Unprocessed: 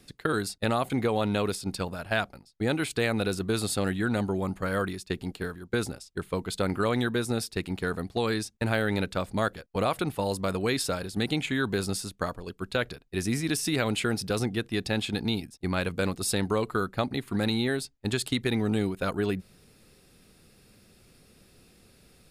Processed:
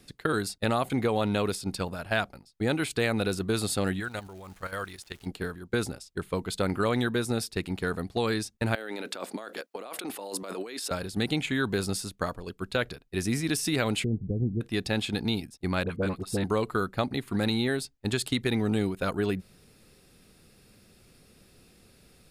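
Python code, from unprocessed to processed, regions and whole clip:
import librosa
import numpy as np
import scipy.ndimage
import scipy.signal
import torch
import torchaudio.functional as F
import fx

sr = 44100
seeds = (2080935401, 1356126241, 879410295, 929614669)

y = fx.peak_eq(x, sr, hz=230.0, db=-11.5, octaves=2.3, at=(3.99, 5.25), fade=0.02)
y = fx.level_steps(y, sr, step_db=11, at=(3.99, 5.25), fade=0.02)
y = fx.dmg_crackle(y, sr, seeds[0], per_s=390.0, level_db=-46.0, at=(3.99, 5.25), fade=0.02)
y = fx.chain(y, sr, fx.highpass(hz=270.0, slope=24),
    fx.over_compress(threshold_db=-37.0, ratio=-1.0), at=(8.75, 10.91))
y = fx.chain(y, sr, fx.gaussian_blur(sigma=21.0),
    fx.low_shelf(hz=150.0, db=8.0), at=(14.04, 14.61))
y = fx.chain(y, sr, fx.high_shelf(hz=2300.0, db=-11.0),
    fx.dispersion(late='highs', ms=45.0, hz=900.0), at=(15.83, 16.44))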